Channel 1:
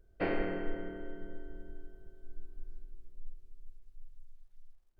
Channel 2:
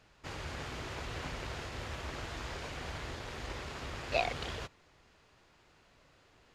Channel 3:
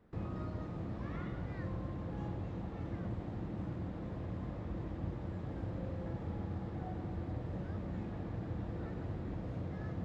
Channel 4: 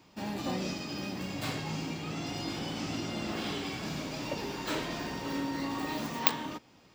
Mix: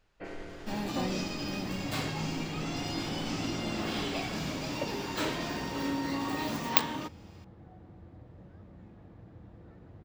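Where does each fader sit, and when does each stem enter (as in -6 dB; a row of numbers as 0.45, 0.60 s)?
-10.5, -9.5, -11.0, +1.5 dB; 0.00, 0.00, 0.85, 0.50 s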